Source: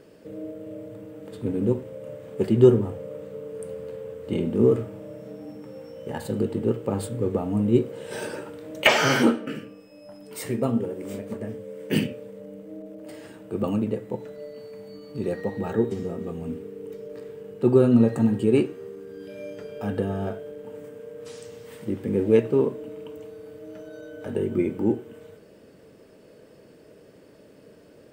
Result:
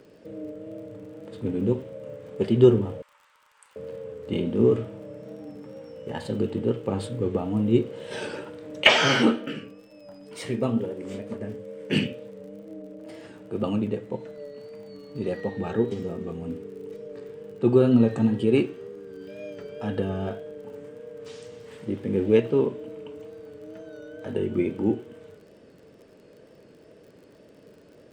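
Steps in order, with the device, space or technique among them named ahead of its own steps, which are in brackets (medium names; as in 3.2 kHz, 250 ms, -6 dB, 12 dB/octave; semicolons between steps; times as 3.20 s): dynamic bell 3.2 kHz, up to +6 dB, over -53 dBFS, Q 1.7; 3.02–3.76 s: Chebyshev high-pass 890 Hz, order 5; lo-fi chain (low-pass 6.8 kHz 12 dB/octave; wow and flutter; crackle 39 per s -45 dBFS); trim -1 dB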